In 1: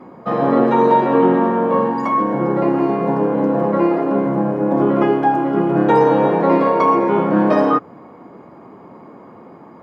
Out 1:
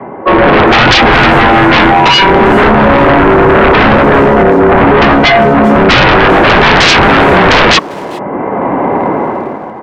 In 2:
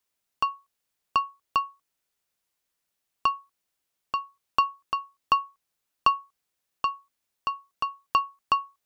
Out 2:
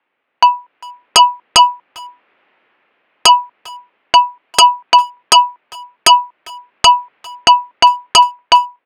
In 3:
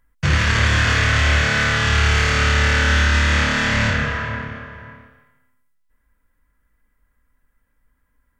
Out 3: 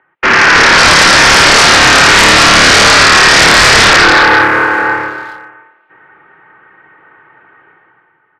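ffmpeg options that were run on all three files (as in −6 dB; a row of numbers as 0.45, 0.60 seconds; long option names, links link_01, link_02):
-filter_complex "[0:a]dynaudnorm=framelen=100:gausssize=13:maxgain=14.5dB,highpass=frequency=390:width_type=q:width=0.5412,highpass=frequency=390:width_type=q:width=1.307,lowpass=frequency=2800:width_type=q:width=0.5176,lowpass=frequency=2800:width_type=q:width=0.7071,lowpass=frequency=2800:width_type=q:width=1.932,afreqshift=-130,aeval=exprs='0.891*sin(PI/2*6.31*val(0)/0.891)':channel_layout=same,asplit=2[link_01][link_02];[link_02]adelay=400,highpass=300,lowpass=3400,asoftclip=type=hard:threshold=-11dB,volume=-17dB[link_03];[link_01][link_03]amix=inputs=2:normalize=0,volume=-1dB"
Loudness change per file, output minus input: +10.5, +18.0, +13.0 LU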